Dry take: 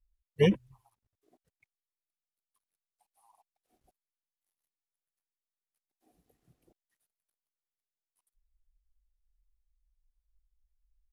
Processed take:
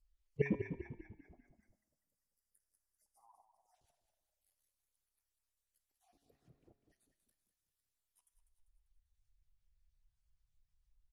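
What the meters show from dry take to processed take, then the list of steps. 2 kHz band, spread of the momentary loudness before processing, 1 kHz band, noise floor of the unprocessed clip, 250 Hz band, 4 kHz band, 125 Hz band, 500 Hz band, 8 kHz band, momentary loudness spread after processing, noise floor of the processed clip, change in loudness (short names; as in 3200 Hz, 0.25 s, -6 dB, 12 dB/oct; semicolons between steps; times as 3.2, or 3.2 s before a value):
-6.5 dB, 6 LU, -12.0 dB, under -85 dBFS, -9.5 dB, -27.5 dB, -9.5 dB, -10.5 dB, n/a, 18 LU, under -85 dBFS, -12.0 dB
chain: random spectral dropouts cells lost 28%; treble ducked by the level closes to 1300 Hz, closed at -64.5 dBFS; spectral delete 1.17–3.75, 2100–4600 Hz; high shelf 4100 Hz +9 dB; resonator 140 Hz, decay 0.83 s, harmonics all, mix 60%; frequency-shifting echo 0.197 s, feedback 49%, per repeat -35 Hz, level -8.5 dB; gain +7 dB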